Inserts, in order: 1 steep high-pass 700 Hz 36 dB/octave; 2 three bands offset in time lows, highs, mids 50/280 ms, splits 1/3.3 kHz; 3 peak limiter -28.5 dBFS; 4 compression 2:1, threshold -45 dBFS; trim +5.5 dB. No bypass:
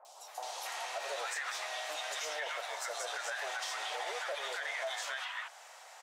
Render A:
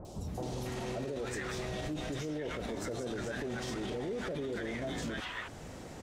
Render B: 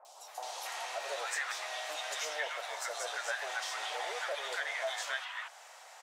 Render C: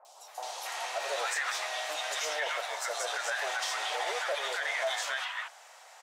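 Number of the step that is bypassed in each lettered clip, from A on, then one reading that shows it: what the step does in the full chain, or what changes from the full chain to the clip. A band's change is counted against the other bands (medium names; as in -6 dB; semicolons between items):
1, 500 Hz band +10.5 dB; 3, crest factor change +4.0 dB; 4, mean gain reduction 4.0 dB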